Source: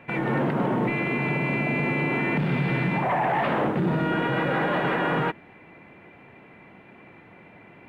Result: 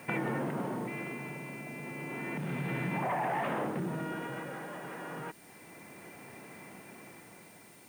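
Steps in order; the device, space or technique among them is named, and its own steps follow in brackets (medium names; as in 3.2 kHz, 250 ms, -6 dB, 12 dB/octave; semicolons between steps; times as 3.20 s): medium wave at night (band-pass 110–3600 Hz; compression, threshold -30 dBFS, peak gain reduction 10 dB; tremolo 0.31 Hz, depth 69%; whistle 9 kHz -63 dBFS; white noise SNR 23 dB)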